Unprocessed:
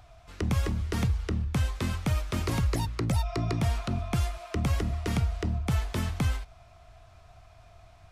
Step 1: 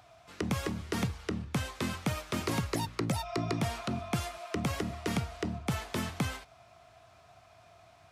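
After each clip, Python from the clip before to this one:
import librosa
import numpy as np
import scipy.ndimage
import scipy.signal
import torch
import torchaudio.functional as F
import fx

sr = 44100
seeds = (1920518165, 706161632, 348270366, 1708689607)

y = scipy.signal.sosfilt(scipy.signal.butter(2, 160.0, 'highpass', fs=sr, output='sos'), x)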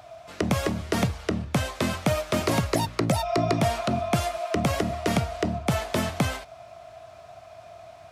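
y = fx.peak_eq(x, sr, hz=630.0, db=10.0, octaves=0.37)
y = F.gain(torch.from_numpy(y), 7.0).numpy()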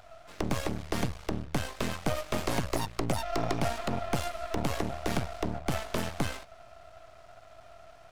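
y = np.maximum(x, 0.0)
y = F.gain(torch.from_numpy(y), -2.5).numpy()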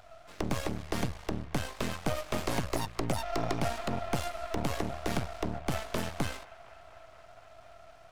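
y = fx.echo_wet_bandpass(x, sr, ms=240, feedback_pct=77, hz=1400.0, wet_db=-18.5)
y = F.gain(torch.from_numpy(y), -1.5).numpy()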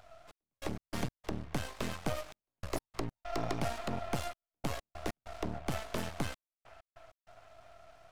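y = fx.step_gate(x, sr, bpm=97, pattern='xx..x.x.xxxxx', floor_db=-60.0, edge_ms=4.5)
y = F.gain(torch.from_numpy(y), -3.5).numpy()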